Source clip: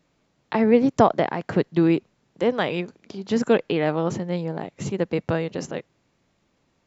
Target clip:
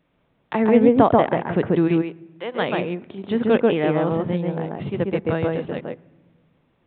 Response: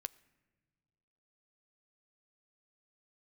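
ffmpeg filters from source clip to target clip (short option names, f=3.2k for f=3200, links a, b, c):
-filter_complex "[0:a]asplit=3[a][b][c];[a]afade=t=out:st=1.87:d=0.02[d];[b]highpass=f=1.3k:p=1,afade=t=in:st=1.87:d=0.02,afade=t=out:st=2.54:d=0.02[e];[c]afade=t=in:st=2.54:d=0.02[f];[d][e][f]amix=inputs=3:normalize=0,asplit=2[g][h];[1:a]atrim=start_sample=2205,lowpass=f=1.3k:p=1,adelay=137[i];[h][i]afir=irnorm=-1:irlink=0,volume=3.5dB[j];[g][j]amix=inputs=2:normalize=0,aresample=8000,aresample=44100"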